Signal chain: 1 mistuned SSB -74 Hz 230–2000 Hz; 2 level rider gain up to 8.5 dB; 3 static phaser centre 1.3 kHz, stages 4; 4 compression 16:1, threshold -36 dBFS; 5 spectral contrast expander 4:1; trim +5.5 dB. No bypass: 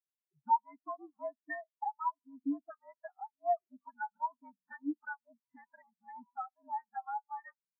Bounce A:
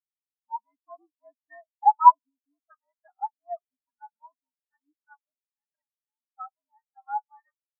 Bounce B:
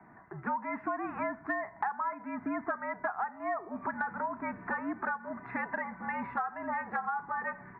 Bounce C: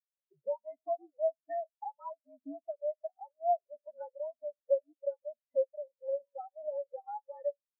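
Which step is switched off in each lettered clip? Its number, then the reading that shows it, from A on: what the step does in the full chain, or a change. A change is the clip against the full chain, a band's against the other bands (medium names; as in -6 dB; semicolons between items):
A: 4, mean gain reduction 10.0 dB; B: 5, 2 kHz band +7.5 dB; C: 3, crest factor change -2.5 dB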